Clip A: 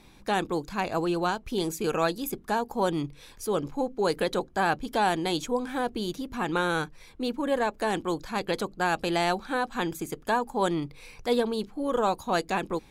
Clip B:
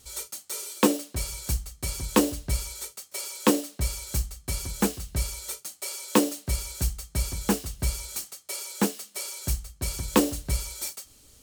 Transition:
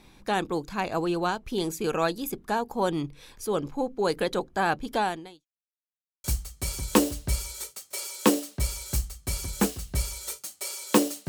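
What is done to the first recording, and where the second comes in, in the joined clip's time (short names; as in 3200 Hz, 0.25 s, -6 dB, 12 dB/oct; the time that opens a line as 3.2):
clip A
4.98–5.46 fade out quadratic
5.46–6.24 mute
6.24 switch to clip B from 1.45 s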